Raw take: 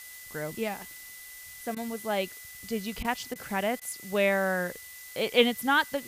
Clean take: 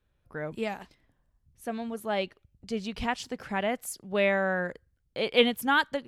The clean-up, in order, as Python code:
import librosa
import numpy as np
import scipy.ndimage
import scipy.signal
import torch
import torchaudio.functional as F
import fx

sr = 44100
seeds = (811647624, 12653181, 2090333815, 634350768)

y = fx.notch(x, sr, hz=2000.0, q=30.0)
y = fx.fix_interpolate(y, sr, at_s=(1.75, 3.03, 3.34, 3.8), length_ms=14.0)
y = fx.noise_reduce(y, sr, print_start_s=0.98, print_end_s=1.48, reduce_db=26.0)